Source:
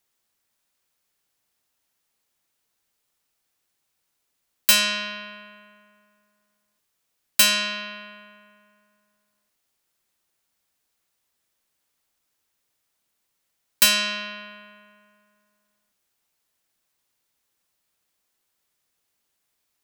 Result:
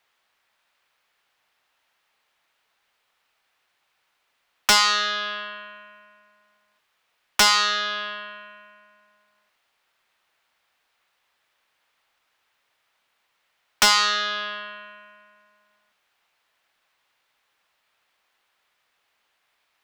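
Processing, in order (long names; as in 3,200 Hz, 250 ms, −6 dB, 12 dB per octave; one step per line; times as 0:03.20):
three-way crossover with the lows and the highs turned down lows −14 dB, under 580 Hz, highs −18 dB, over 3,700 Hz
in parallel at +2.5 dB: downward compressor, threshold −37 dBFS, peak gain reduction 17 dB
on the sum: highs frequency-modulated by the lows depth 0.73 ms
level +5.5 dB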